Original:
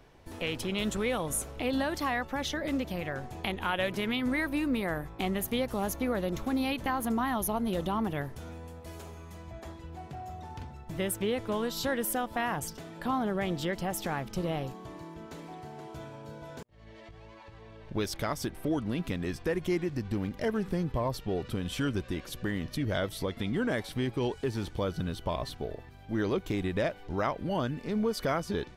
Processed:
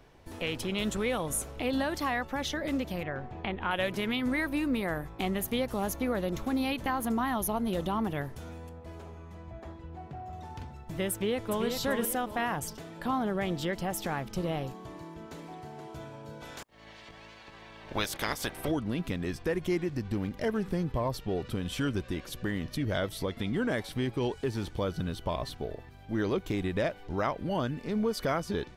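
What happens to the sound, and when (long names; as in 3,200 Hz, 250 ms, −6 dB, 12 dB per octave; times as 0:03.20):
0:03.03–0:03.71: low-pass filter 2,500 Hz
0:08.69–0:10.33: low-pass filter 1,800 Hz 6 dB per octave
0:11.12–0:11.66: delay throw 390 ms, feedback 35%, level −5 dB
0:16.40–0:18.70: ceiling on every frequency bin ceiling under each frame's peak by 19 dB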